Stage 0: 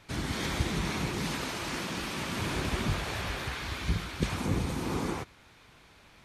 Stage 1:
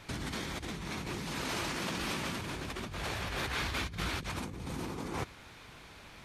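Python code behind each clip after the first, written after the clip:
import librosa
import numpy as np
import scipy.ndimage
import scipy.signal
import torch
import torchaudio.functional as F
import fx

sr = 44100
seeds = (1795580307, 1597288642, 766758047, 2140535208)

y = fx.over_compress(x, sr, threshold_db=-38.0, ratio=-1.0)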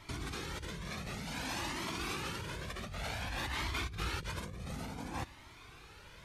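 y = fx.comb_cascade(x, sr, direction='rising', hz=0.55)
y = y * 10.0 ** (1.5 / 20.0)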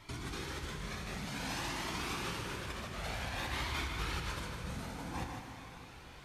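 y = x + 10.0 ** (-7.5 / 20.0) * np.pad(x, (int(153 * sr / 1000.0), 0))[:len(x)]
y = fx.rev_plate(y, sr, seeds[0], rt60_s=3.6, hf_ratio=0.8, predelay_ms=0, drr_db=3.0)
y = y * 10.0 ** (-2.0 / 20.0)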